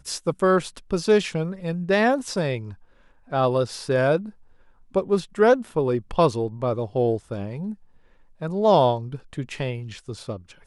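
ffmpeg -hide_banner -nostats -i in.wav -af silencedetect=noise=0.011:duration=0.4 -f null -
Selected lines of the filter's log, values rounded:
silence_start: 2.74
silence_end: 3.31 | silence_duration: 0.57
silence_start: 4.30
silence_end: 4.94 | silence_duration: 0.64
silence_start: 7.74
silence_end: 8.41 | silence_duration: 0.67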